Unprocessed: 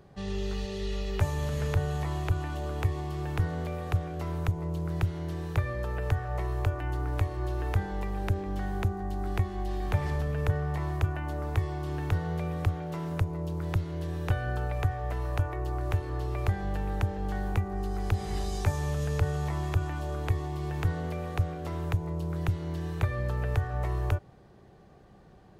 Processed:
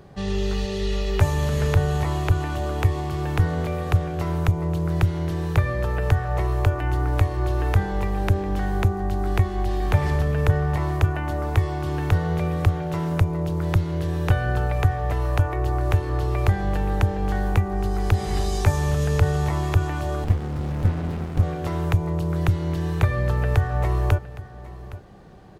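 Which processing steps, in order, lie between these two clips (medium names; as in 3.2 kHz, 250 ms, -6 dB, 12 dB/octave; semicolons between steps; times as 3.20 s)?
delay 814 ms -17 dB; 20.24–21.43 s: sliding maximum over 65 samples; trim +8 dB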